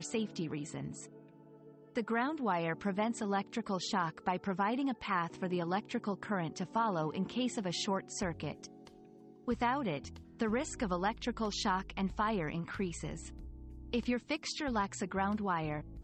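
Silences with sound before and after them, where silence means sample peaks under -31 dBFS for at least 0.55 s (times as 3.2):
0.81–1.97
8.52–9.48
13.1–13.93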